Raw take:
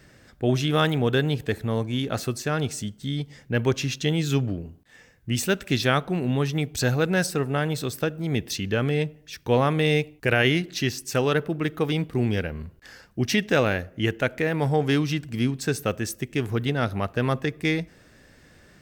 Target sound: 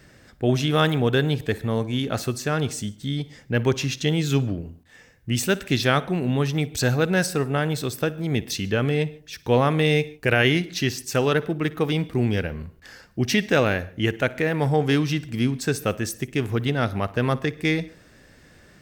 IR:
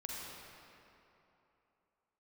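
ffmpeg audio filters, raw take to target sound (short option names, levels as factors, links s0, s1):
-filter_complex "[0:a]asplit=2[s0][s1];[1:a]atrim=start_sample=2205,afade=t=out:st=0.15:d=0.01,atrim=end_sample=7056,adelay=58[s2];[s1][s2]afir=irnorm=-1:irlink=0,volume=0.168[s3];[s0][s3]amix=inputs=2:normalize=0,volume=1.19"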